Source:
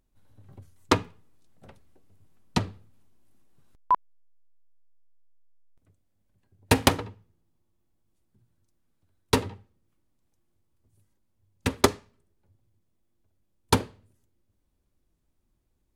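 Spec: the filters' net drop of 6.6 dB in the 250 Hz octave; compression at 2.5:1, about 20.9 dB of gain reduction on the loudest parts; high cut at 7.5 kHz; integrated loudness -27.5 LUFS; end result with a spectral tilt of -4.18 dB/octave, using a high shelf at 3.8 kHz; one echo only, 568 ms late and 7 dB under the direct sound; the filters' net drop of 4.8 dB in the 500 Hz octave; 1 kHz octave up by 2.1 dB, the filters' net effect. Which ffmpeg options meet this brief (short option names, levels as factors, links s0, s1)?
-af "lowpass=7500,equalizer=f=250:t=o:g=-7,equalizer=f=500:t=o:g=-4.5,equalizer=f=1000:t=o:g=4,highshelf=f=3800:g=-6,acompressor=threshold=0.00251:ratio=2.5,aecho=1:1:568:0.447,volume=15.8"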